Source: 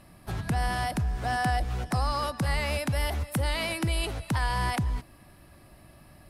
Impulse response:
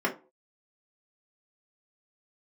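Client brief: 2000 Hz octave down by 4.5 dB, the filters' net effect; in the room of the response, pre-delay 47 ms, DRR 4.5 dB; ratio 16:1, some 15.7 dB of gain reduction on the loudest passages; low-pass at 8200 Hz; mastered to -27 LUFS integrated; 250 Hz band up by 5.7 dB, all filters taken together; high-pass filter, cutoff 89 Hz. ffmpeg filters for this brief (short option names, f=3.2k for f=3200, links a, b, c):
-filter_complex "[0:a]highpass=89,lowpass=8.2k,equalizer=f=250:t=o:g=8,equalizer=f=2k:t=o:g=-5.5,acompressor=threshold=-36dB:ratio=16,asplit=2[a][b];[1:a]atrim=start_sample=2205,adelay=47[c];[b][c]afir=irnorm=-1:irlink=0,volume=-15.5dB[d];[a][d]amix=inputs=2:normalize=0,volume=12.5dB"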